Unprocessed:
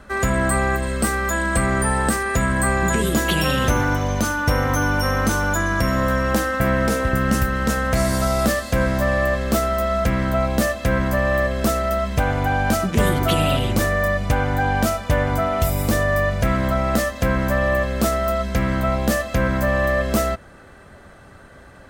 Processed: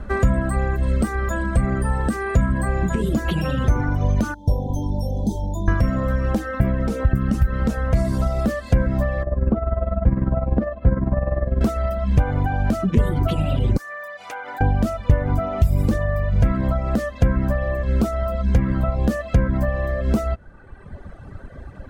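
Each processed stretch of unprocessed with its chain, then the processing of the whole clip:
0:04.34–0:05.68: linear-phase brick-wall band-stop 1,000–3,100 Hz + tuned comb filter 200 Hz, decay 0.41 s, mix 70%
0:09.23–0:11.61: low-pass filter 1,200 Hz + amplitude tremolo 20 Hz, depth 49%
0:13.77–0:14.61: high-pass filter 930 Hz + downward compressor 10 to 1, threshold −28 dBFS
whole clip: downward compressor 6 to 1, threshold −23 dBFS; spectral tilt −3 dB per octave; reverb reduction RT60 1.4 s; level +2.5 dB

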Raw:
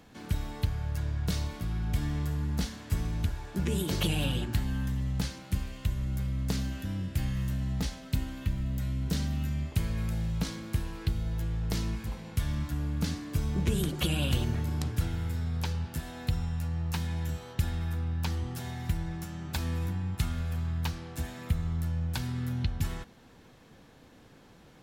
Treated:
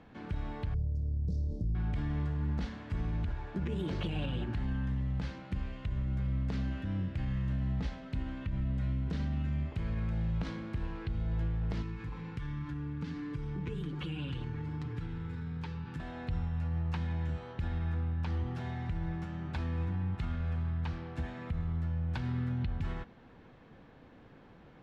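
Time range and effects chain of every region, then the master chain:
0:00.74–0:01.75: Chebyshev band-stop filter 530–5,200 Hz, order 3 + low-shelf EQ 160 Hz +9 dB + downward compressor 4 to 1, threshold −25 dBFS
0:11.82–0:16.00: comb filter 6.8 ms, depth 57% + downward compressor 3 to 1, threshold −36 dBFS + Butterworth band-reject 650 Hz, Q 2.3
whole clip: low-pass filter 2,400 Hz 12 dB per octave; brickwall limiter −26.5 dBFS

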